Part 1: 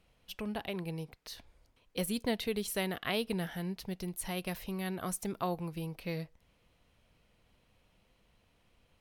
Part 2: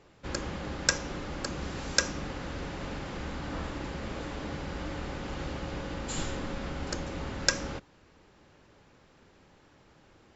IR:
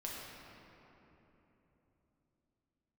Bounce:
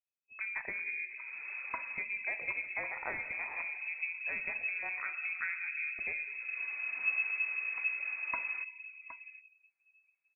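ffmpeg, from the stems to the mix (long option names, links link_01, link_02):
-filter_complex "[0:a]afwtdn=0.00501,highshelf=frequency=2600:gain=5.5,acompressor=threshold=-38dB:ratio=2.5,volume=-0.5dB,asplit=3[link_01][link_02][link_03];[link_02]volume=-3.5dB[link_04];[1:a]adelay=850,volume=-10.5dB,asplit=3[link_05][link_06][link_07];[link_06]volume=-14dB[link_08];[link_07]volume=-11dB[link_09];[link_03]apad=whole_len=494114[link_10];[link_05][link_10]sidechaincompress=threshold=-54dB:ratio=10:attack=35:release=390[link_11];[2:a]atrim=start_sample=2205[link_12];[link_04][link_08]amix=inputs=2:normalize=0[link_13];[link_13][link_12]afir=irnorm=-1:irlink=0[link_14];[link_09]aecho=0:1:766:1[link_15];[link_01][link_11][link_14][link_15]amix=inputs=4:normalize=0,afftdn=noise_reduction=25:noise_floor=-53,asubboost=boost=5.5:cutoff=67,lowpass=frequency=2200:width_type=q:width=0.5098,lowpass=frequency=2200:width_type=q:width=0.6013,lowpass=frequency=2200:width_type=q:width=0.9,lowpass=frequency=2200:width_type=q:width=2.563,afreqshift=-2600"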